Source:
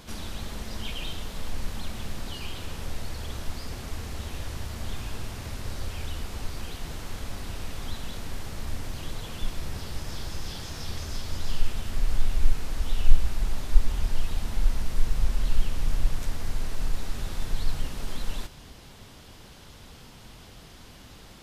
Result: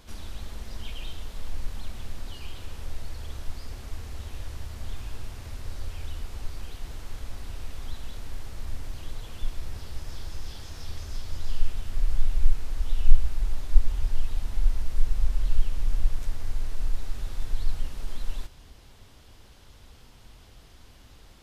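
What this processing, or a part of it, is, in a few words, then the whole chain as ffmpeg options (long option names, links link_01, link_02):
low shelf boost with a cut just above: -af "lowshelf=frequency=92:gain=8,equalizer=frequency=170:width_type=o:width=0.82:gain=-5.5,volume=-6.5dB"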